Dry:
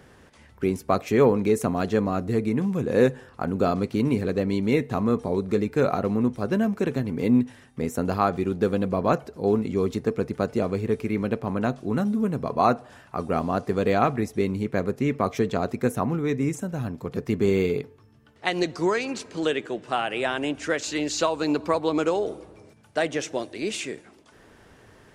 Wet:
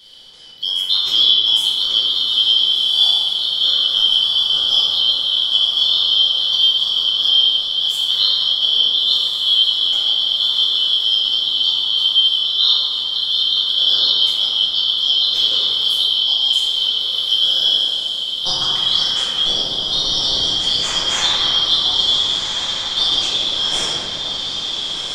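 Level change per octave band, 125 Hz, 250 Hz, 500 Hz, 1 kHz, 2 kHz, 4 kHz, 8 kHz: below −10 dB, below −15 dB, below −10 dB, −5.0 dB, can't be measured, +30.5 dB, +9.5 dB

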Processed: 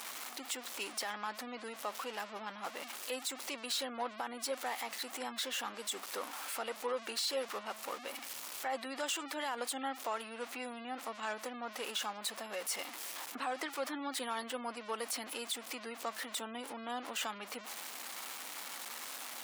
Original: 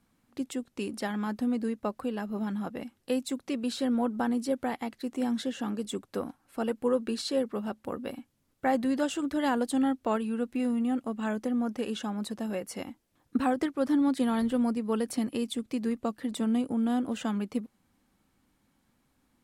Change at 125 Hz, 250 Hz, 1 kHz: can't be measured, −20.0 dB, −4.0 dB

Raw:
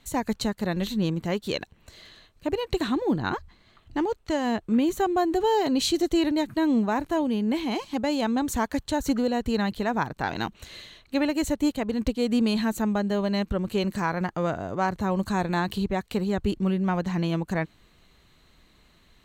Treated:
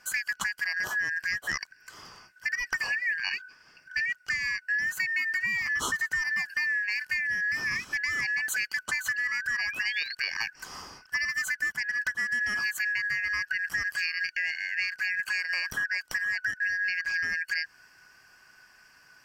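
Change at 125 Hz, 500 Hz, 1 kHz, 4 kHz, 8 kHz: −22.5 dB, below −25 dB, −15.0 dB, −1.5 dB, +0.5 dB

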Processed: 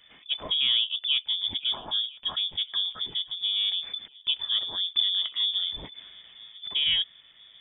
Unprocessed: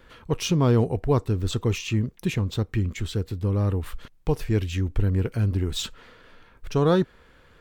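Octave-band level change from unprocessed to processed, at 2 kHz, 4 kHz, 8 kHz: −1.0 dB, +15.0 dB, below −40 dB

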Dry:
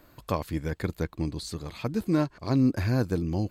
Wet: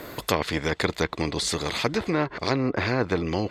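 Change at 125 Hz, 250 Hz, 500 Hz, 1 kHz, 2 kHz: −2.5, −1.0, +6.0, +8.0, +11.5 decibels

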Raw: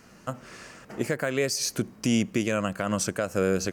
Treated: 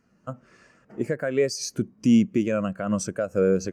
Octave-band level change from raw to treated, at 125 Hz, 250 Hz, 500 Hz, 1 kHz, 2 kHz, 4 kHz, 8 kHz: +1.5, +5.0, +3.5, −3.0, −4.0, −4.5, −4.0 decibels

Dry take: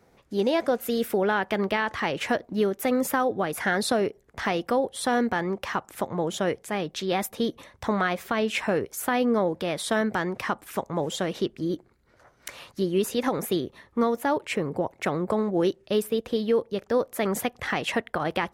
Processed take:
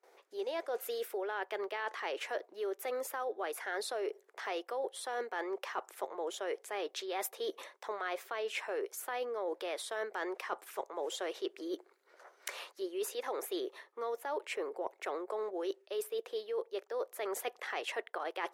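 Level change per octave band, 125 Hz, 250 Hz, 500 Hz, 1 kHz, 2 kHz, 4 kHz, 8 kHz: below −40 dB, −19.5 dB, −11.0 dB, −11.0 dB, −11.5 dB, −10.0 dB, −9.0 dB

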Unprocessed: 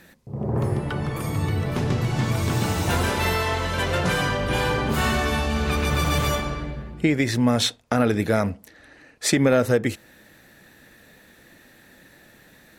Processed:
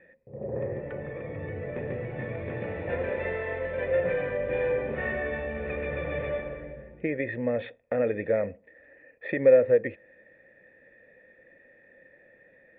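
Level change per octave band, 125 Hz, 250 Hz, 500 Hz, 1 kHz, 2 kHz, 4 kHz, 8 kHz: −14.5 dB, −12.0 dB, +0.5 dB, −15.0 dB, −7.5 dB, below −25 dB, below −40 dB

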